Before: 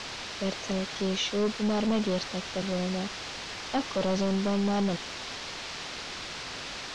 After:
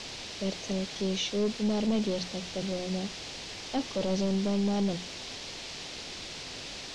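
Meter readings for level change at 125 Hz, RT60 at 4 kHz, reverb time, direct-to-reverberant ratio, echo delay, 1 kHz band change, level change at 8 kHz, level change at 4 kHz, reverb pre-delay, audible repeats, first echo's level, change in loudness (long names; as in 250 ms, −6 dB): −1.0 dB, no reverb audible, no reverb audible, no reverb audible, no echo audible, −6.0 dB, −0.5 dB, −1.5 dB, no reverb audible, no echo audible, no echo audible, −1.5 dB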